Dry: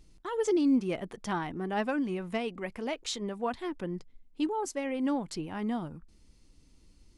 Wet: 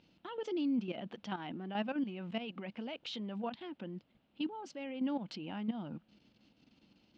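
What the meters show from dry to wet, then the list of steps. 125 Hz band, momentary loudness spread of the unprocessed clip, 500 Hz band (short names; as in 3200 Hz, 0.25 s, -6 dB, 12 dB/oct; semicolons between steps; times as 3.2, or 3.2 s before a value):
-5.5 dB, 10 LU, -10.0 dB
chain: level quantiser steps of 15 dB; limiter -31.5 dBFS, peak gain reduction 9.5 dB; added noise brown -66 dBFS; speaker cabinet 190–4300 Hz, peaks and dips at 210 Hz +6 dB, 410 Hz -7 dB, 1100 Hz -6 dB, 1900 Hz -5 dB, 2900 Hz +7 dB; gain +4 dB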